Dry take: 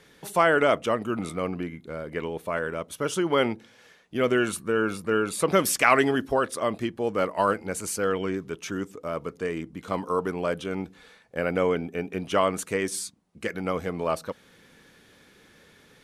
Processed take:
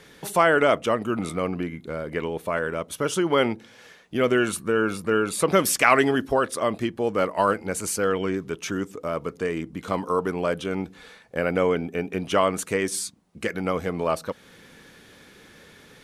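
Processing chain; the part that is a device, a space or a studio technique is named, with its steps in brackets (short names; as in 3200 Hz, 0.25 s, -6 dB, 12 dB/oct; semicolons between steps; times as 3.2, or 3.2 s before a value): parallel compression (in parallel at -3 dB: compressor, threshold -36 dBFS, peak gain reduction 20.5 dB); on the sum: gain +1 dB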